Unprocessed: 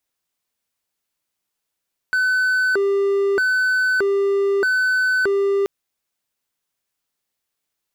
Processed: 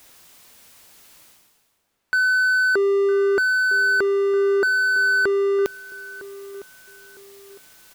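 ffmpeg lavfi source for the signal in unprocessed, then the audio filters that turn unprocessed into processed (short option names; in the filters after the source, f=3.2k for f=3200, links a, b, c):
-f lavfi -i "aevalsrc='0.211*(1-4*abs(mod((953.5*t+556.5/0.8*(0.5-abs(mod(0.8*t,1)-0.5)))+0.25,1)-0.5))':d=3.53:s=44100"
-filter_complex "[0:a]areverse,acompressor=mode=upward:threshold=-26dB:ratio=2.5,areverse,asplit=2[a][b];[b]adelay=957,lowpass=f=1.6k:p=1,volume=-16dB,asplit=2[c][d];[d]adelay=957,lowpass=f=1.6k:p=1,volume=0.35,asplit=2[e][f];[f]adelay=957,lowpass=f=1.6k:p=1,volume=0.35[g];[a][c][e][g]amix=inputs=4:normalize=0"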